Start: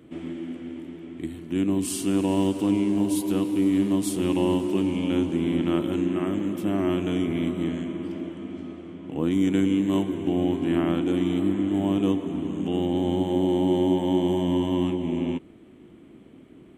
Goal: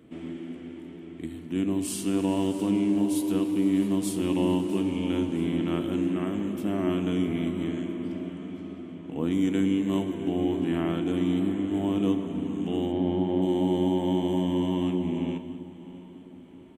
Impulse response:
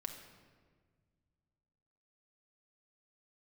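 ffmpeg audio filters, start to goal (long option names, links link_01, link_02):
-filter_complex "[0:a]asplit=3[link_01][link_02][link_03];[link_01]afade=type=out:start_time=12.91:duration=0.02[link_04];[link_02]lowpass=2800,afade=type=in:start_time=12.91:duration=0.02,afade=type=out:start_time=13.41:duration=0.02[link_05];[link_03]afade=type=in:start_time=13.41:duration=0.02[link_06];[link_04][link_05][link_06]amix=inputs=3:normalize=0,aecho=1:1:659|1318|1977|2636:0.126|0.0617|0.0302|0.0148,asplit=2[link_07][link_08];[1:a]atrim=start_sample=2205,asetrate=48510,aresample=44100[link_09];[link_08][link_09]afir=irnorm=-1:irlink=0,volume=3.5dB[link_10];[link_07][link_10]amix=inputs=2:normalize=0,volume=-8.5dB"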